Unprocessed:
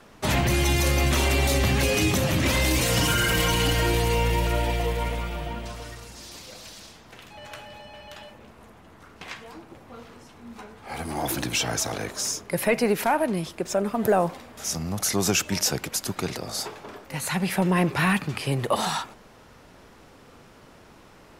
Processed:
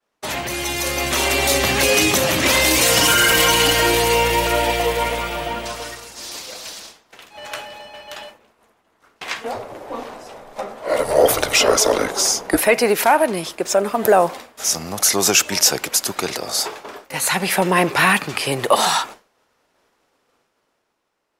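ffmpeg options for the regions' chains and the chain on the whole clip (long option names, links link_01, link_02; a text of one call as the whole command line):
ffmpeg -i in.wav -filter_complex "[0:a]asettb=1/sr,asplit=3[link_01][link_02][link_03];[link_01]atrim=end=9.444[link_04];[link_02]atrim=start=9.44:end=12.61,asetpts=PTS-STARTPTS,afade=type=in:duration=0.004:curve=qsin,afade=type=out:start_time=3.166:duration=0.004:curve=qsin,equalizer=frequency=770:width=0.89:gain=11.5,acompressor=mode=upward:threshold=-35dB:ratio=2.5:attack=3.2:release=140:knee=2.83:detection=peak,afreqshift=-220[link_05];[link_03]atrim=start=12.606[link_06];[link_04][link_05]acrossfade=duration=0.004:curve1=hsin:curve2=qsin[link_07];[link_07][link_06]acrossfade=duration=0.004:curve1=qsin:curve2=hsin,bass=frequency=250:gain=-14,treble=frequency=4000:gain=2,agate=range=-33dB:threshold=-39dB:ratio=3:detection=peak,dynaudnorm=framelen=180:gausssize=13:maxgain=11.5dB" out.wav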